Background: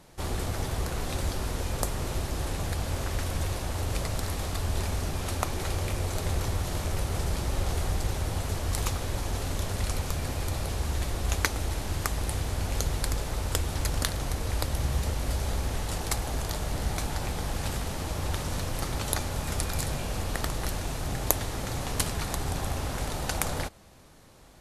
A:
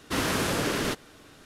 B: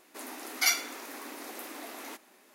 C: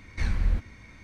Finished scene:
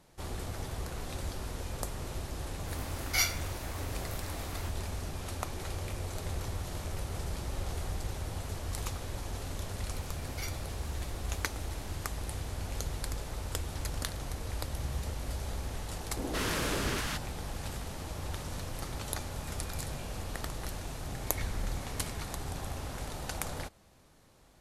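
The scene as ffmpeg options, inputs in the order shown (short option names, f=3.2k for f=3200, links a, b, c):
-filter_complex "[2:a]asplit=2[a][b];[0:a]volume=-7.5dB[c];[a]asplit=2[d][e];[e]adelay=23,volume=-3dB[f];[d][f]amix=inputs=2:normalize=0[g];[1:a]acrossover=split=200|700[h][i][j];[j]adelay=170[k];[h]adelay=200[l];[l][i][k]amix=inputs=3:normalize=0[m];[3:a]acompressor=threshold=-30dB:ratio=6:attack=3.2:release=140:knee=1:detection=peak[n];[g]atrim=end=2.54,asetpts=PTS-STARTPTS,volume=-5dB,afade=t=in:d=0.004:c=hsin,afade=t=out:st=2.536:d=0.004:c=hsin,adelay=2520[o];[b]atrim=end=2.54,asetpts=PTS-STARTPTS,volume=-17.5dB,afade=t=in:d=0.004:c=hsin,afade=t=out:st=2.536:d=0.004:c=hsin,adelay=9760[p];[m]atrim=end=1.45,asetpts=PTS-STARTPTS,volume=-5dB,afade=t=in:d=0.004:c=hsin,afade=t=out:st=1.446:d=0.004:c=hsin,adelay=16060[q];[n]atrim=end=1.03,asetpts=PTS-STARTPTS,volume=-2dB,afade=t=in:d=0.004:c=hsin,afade=t=out:st=1.026:d=0.004:c=hsin,adelay=21200[r];[c][o][p][q][r]amix=inputs=5:normalize=0"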